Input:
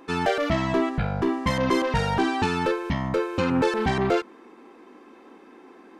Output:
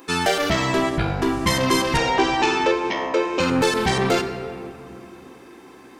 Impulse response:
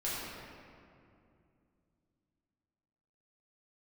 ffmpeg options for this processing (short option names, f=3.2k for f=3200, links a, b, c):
-filter_complex "[0:a]asettb=1/sr,asplit=3[a][b][c];[a]atrim=end=1.974[d];[b]atrim=start=1.97:end=3.4,asetpts=PTS-STARTPTS,afade=t=in:d=0.004:c=qsin,afade=t=out:st=1.426:d=0.004:c=qsin,highpass=f=280:w=0.5412,highpass=f=280:w=1.3066,equalizer=f=380:t=q:w=4:g=4,equalizer=f=590:t=q:w=4:g=5,equalizer=f=980:t=q:w=4:g=4,equalizer=f=1.4k:t=q:w=4:g=-4,equalizer=f=2.4k:t=q:w=4:g=3,equalizer=f=4.3k:t=q:w=4:g=-6,lowpass=f=6.2k:w=0.5412,lowpass=f=6.2k:w=1.3066[e];[c]atrim=start=3.396[f];[d][e]acrossfade=d=0.004:c1=hsin:c2=qsin[g];[g][f]acrossfade=d=0.004:c1=qsin:c2=hsin,asplit=2[h][i];[1:a]atrim=start_sample=2205[j];[i][j]afir=irnorm=-1:irlink=0,volume=-11dB[k];[h][k]amix=inputs=2:normalize=0,crystalizer=i=4:c=0"